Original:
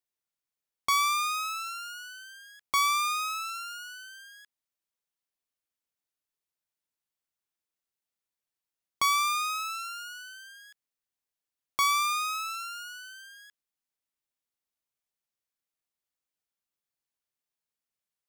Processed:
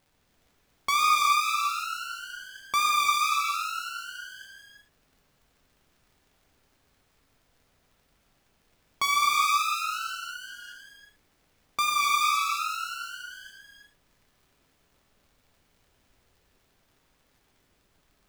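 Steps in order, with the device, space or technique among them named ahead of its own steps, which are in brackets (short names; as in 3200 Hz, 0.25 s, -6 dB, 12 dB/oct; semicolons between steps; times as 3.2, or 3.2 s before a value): 11.89–13.31 gate with hold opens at -38 dBFS; warped LP (record warp 33 1/3 rpm, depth 100 cents; crackle; pink noise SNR 37 dB); bell 11000 Hz -4 dB 1.6 oct; non-linear reverb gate 0.45 s flat, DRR -2.5 dB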